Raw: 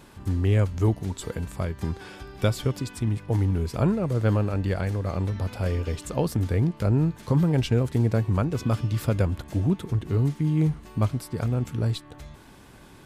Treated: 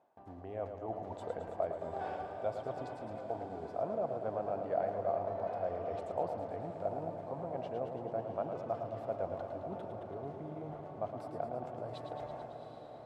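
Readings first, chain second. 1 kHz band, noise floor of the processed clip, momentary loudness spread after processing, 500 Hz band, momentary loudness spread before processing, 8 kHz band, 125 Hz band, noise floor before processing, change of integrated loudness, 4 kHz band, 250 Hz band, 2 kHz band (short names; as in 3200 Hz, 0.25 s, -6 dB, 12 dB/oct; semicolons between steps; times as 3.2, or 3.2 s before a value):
-1.0 dB, -49 dBFS, 8 LU, -5.0 dB, 8 LU, under -25 dB, -26.0 dB, -49 dBFS, -13.5 dB, under -20 dB, -19.5 dB, -15.5 dB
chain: gate with hold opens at -37 dBFS; reverse; compressor 6:1, threshold -35 dBFS, peak gain reduction 17 dB; reverse; band-pass 690 Hz, Q 7.5; diffused feedback echo 0.748 s, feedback 61%, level -9.5 dB; warbling echo 0.11 s, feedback 74%, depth 65 cents, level -7.5 dB; gain +17 dB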